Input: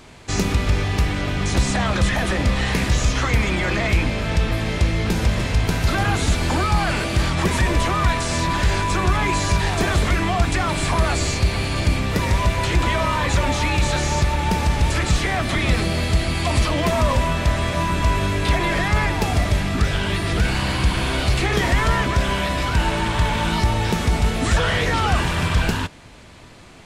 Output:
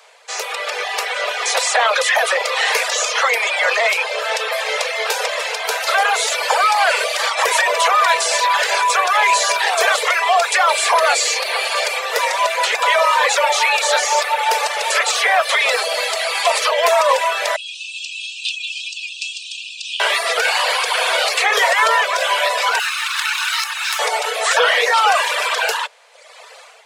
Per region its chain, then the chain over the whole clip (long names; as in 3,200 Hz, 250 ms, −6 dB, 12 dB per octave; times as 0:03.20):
0:17.56–0:20.00: linear-phase brick-wall band-pass 2,400–9,100 Hz + high-shelf EQ 4,400 Hz −10 dB
0:22.79–0:23.99: lower of the sound and its delayed copy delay 0.76 ms + high-pass filter 1,300 Hz 24 dB per octave
whole clip: Butterworth high-pass 450 Hz 96 dB per octave; reverb reduction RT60 1.1 s; automatic gain control gain up to 11.5 dB